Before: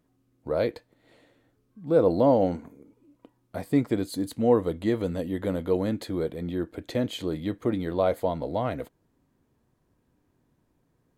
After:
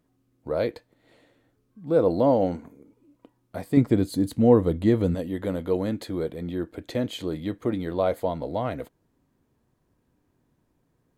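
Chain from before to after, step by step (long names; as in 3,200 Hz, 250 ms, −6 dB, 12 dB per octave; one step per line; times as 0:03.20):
0:03.77–0:05.15: low-shelf EQ 300 Hz +10 dB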